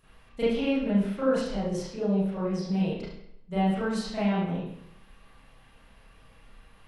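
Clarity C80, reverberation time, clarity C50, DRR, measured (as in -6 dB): 3.5 dB, 0.75 s, -0.5 dB, -12.5 dB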